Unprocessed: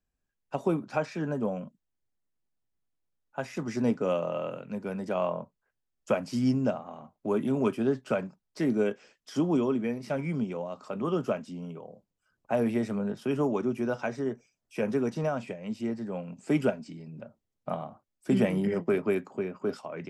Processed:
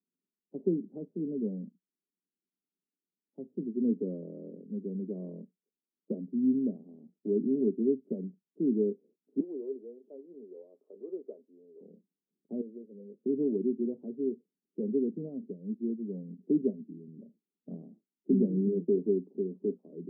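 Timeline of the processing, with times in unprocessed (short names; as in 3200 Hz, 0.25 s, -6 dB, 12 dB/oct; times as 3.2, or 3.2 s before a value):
9.4–11.81 HPF 460 Hz 24 dB/oct
12.61–13.24 vocal tract filter e
whole clip: elliptic band-pass 180–420 Hz, stop band 70 dB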